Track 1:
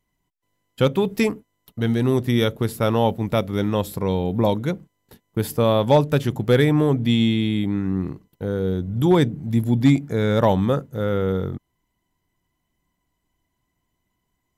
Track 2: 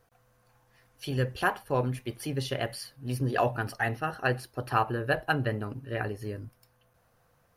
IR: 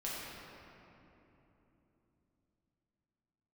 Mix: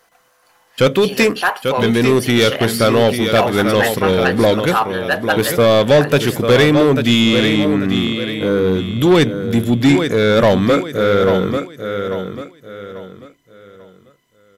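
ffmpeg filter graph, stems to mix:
-filter_complex "[0:a]equalizer=f=870:t=o:w=0.39:g=-12.5,volume=3dB,asplit=2[a][b];[b]volume=-9.5dB[c];[1:a]bass=f=250:g=-15,treble=f=4k:g=5,volume=0.5dB[d];[c]aecho=0:1:842|1684|2526|3368:1|0.31|0.0961|0.0298[e];[a][d][e]amix=inputs=3:normalize=0,asplit=2[f][g];[g]highpass=f=720:p=1,volume=19dB,asoftclip=type=tanh:threshold=-2.5dB[h];[f][h]amix=inputs=2:normalize=0,lowpass=f=5.5k:p=1,volume=-6dB"

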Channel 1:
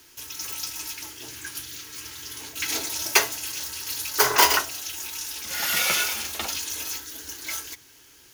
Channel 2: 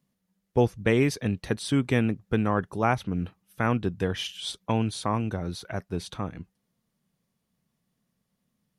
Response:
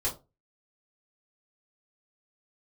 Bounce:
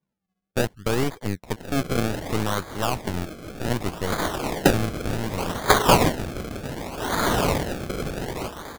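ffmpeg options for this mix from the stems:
-filter_complex "[0:a]adelay=1500,volume=2dB[a];[1:a]aeval=exprs='0.299*(cos(1*acos(clip(val(0)/0.299,-1,1)))-cos(1*PI/2))+0.0168*(cos(7*acos(clip(val(0)/0.299,-1,1)))-cos(7*PI/2))+0.0473*(cos(8*acos(clip(val(0)/0.299,-1,1)))-cos(8*PI/2))':c=same,volume=-2dB[b];[a][b]amix=inputs=2:normalize=0,acrusher=samples=32:mix=1:aa=0.000001:lfo=1:lforange=32:lforate=0.66"

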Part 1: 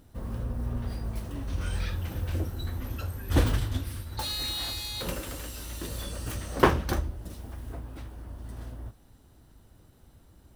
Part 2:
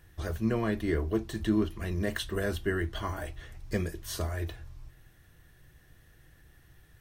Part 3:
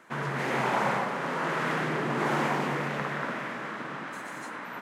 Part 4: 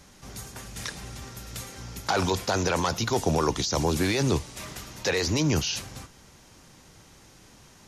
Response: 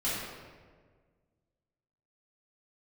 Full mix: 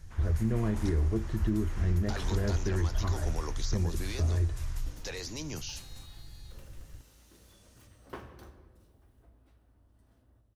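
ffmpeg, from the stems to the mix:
-filter_complex "[0:a]adelay=1500,volume=-20dB,asplit=2[a][b];[b]volume=-13dB[c];[1:a]aemphasis=mode=reproduction:type=riaa,volume=-0.5dB,asplit=2[d][e];[2:a]equalizer=f=7k:w=0.37:g=8,volume=-16.5dB[f];[3:a]highshelf=f=4.2k:g=7.5,volume=-11dB[g];[e]apad=whole_len=531554[h];[a][h]sidechaincompress=threshold=-31dB:ratio=8:attack=16:release=633[i];[4:a]atrim=start_sample=2205[j];[c][j]afir=irnorm=-1:irlink=0[k];[i][d][f][g][k]amix=inputs=5:normalize=0,flanger=delay=8.4:depth=2.8:regen=-90:speed=0.78:shape=sinusoidal,alimiter=limit=-19.5dB:level=0:latency=1:release=210"

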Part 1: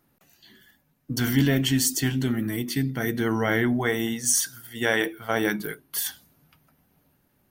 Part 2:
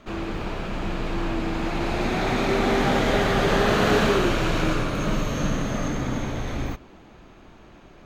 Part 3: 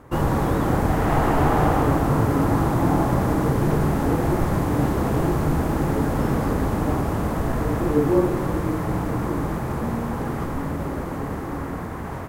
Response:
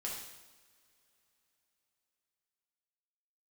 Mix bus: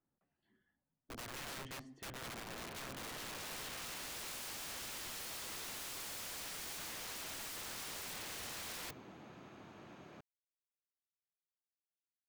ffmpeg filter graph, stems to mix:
-filter_complex "[0:a]lowpass=1.5k,bandreject=f=50:t=h:w=6,bandreject=f=100:t=h:w=6,bandreject=f=150:t=h:w=6,aeval=exprs='0.299*(cos(1*acos(clip(val(0)/0.299,-1,1)))-cos(1*PI/2))+0.0335*(cos(7*acos(clip(val(0)/0.299,-1,1)))-cos(7*PI/2))':c=same,volume=-6.5dB,asplit=2[a][b];[b]volume=-24dB[c];[1:a]highpass=f=100:w=0.5412,highpass=f=100:w=1.3066,adelay=2150,volume=-5.5dB,afade=t=in:st=2.97:d=0.46:silence=0.298538,asplit=2[d][e];[e]volume=-19.5dB[f];[a][d]amix=inputs=2:normalize=0,acrossover=split=360|3000[g][h][i];[h]acompressor=threshold=-39dB:ratio=2[j];[g][j][i]amix=inputs=3:normalize=0,alimiter=level_in=2dB:limit=-24dB:level=0:latency=1:release=408,volume=-2dB,volume=0dB[k];[3:a]atrim=start_sample=2205[l];[c][f]amix=inputs=2:normalize=0[m];[m][l]afir=irnorm=-1:irlink=0[n];[k][n]amix=inputs=2:normalize=0,aeval=exprs='(mod(112*val(0)+1,2)-1)/112':c=same"

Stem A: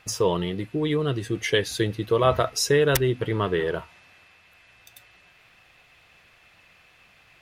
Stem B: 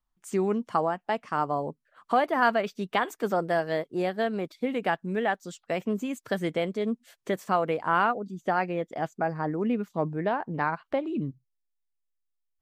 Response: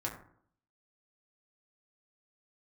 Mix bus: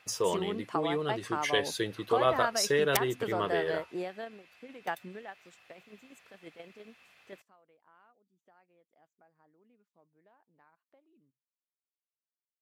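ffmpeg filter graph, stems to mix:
-filter_complex "[0:a]volume=-5dB,asplit=2[a][b];[1:a]acompressor=threshold=-34dB:ratio=2,volume=0.5dB[c];[b]apad=whole_len=556324[d];[c][d]sidechaingate=range=-31dB:threshold=-58dB:ratio=16:detection=peak[e];[a][e]amix=inputs=2:normalize=0,highpass=f=340:p=1"

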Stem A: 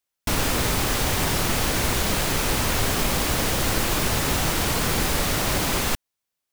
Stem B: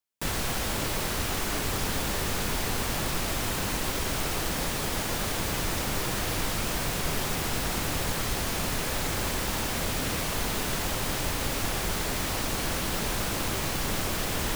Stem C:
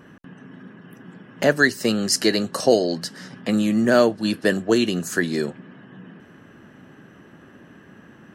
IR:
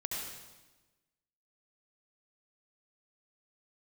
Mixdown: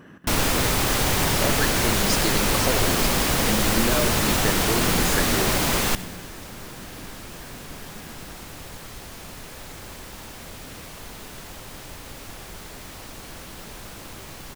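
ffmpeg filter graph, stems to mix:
-filter_complex "[0:a]equalizer=f=67:t=o:w=0.98:g=-3.5,volume=0.5dB,asplit=2[a][b];[b]volume=-15.5dB[c];[1:a]adelay=650,volume=-10dB[d];[2:a]acompressor=threshold=-25dB:ratio=6,volume=-2dB,asplit=2[e][f];[f]volume=-7.5dB[g];[3:a]atrim=start_sample=2205[h];[c][g]amix=inputs=2:normalize=0[i];[i][h]afir=irnorm=-1:irlink=0[j];[a][d][e][j]amix=inputs=4:normalize=0"

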